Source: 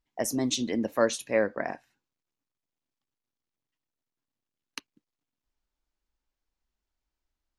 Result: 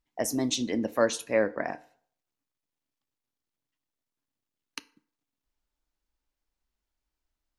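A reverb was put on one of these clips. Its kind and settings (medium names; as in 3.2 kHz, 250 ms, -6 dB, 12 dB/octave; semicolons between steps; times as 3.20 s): FDN reverb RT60 0.56 s, low-frequency decay 0.75×, high-frequency decay 0.65×, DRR 15 dB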